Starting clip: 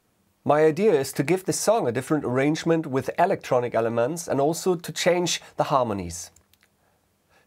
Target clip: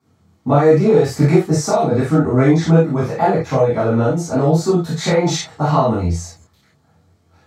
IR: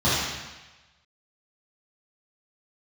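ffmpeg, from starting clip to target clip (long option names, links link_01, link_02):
-filter_complex "[0:a]flanger=delay=22.5:depth=5.9:speed=0.83[link_01];[1:a]atrim=start_sample=2205,atrim=end_sample=3969,asetrate=52920,aresample=44100[link_02];[link_01][link_02]afir=irnorm=-1:irlink=0,volume=-7.5dB"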